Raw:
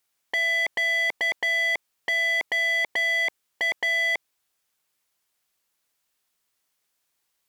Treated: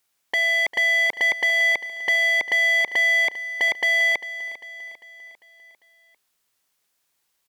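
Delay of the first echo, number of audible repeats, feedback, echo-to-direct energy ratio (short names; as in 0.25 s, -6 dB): 0.398 s, 4, 52%, -13.5 dB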